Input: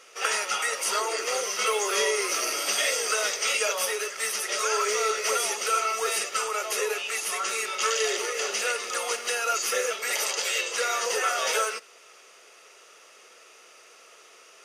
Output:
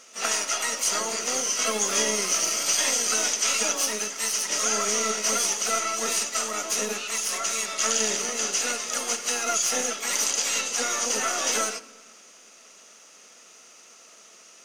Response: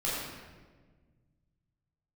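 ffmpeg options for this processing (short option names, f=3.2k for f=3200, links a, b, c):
-filter_complex "[0:a]aeval=exprs='0.266*(cos(1*acos(clip(val(0)/0.266,-1,1)))-cos(1*PI/2))+0.00266*(cos(6*acos(clip(val(0)/0.266,-1,1)))-cos(6*PI/2))':c=same,asplit=3[a][b][c];[b]asetrate=22050,aresample=44100,atempo=2,volume=-6dB[d];[c]asetrate=66075,aresample=44100,atempo=0.66742,volume=-9dB[e];[a][d][e]amix=inputs=3:normalize=0,equalizer=f=6.4k:t=o:w=0.7:g=11.5,asplit=2[f][g];[1:a]atrim=start_sample=2205[h];[g][h]afir=irnorm=-1:irlink=0,volume=-22.5dB[i];[f][i]amix=inputs=2:normalize=0,volume=-4.5dB"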